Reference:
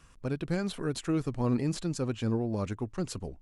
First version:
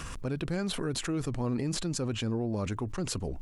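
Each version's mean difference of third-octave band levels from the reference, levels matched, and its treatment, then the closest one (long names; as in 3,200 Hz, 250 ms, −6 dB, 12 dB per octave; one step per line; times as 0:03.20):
4.0 dB: envelope flattener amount 70%
level −4.5 dB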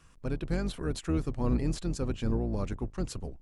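1.5 dB: sub-octave generator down 2 octaves, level +1 dB
level −2 dB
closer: second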